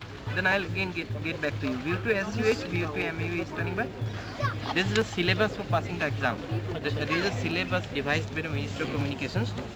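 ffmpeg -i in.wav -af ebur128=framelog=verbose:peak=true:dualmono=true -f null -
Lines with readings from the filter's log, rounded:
Integrated loudness:
  I:         -25.8 LUFS
  Threshold: -35.8 LUFS
Loudness range:
  LRA:         1.7 LU
  Threshold: -45.8 LUFS
  LRA low:   -26.5 LUFS
  LRA high:  -24.9 LUFS
True peak:
  Peak:      -10.1 dBFS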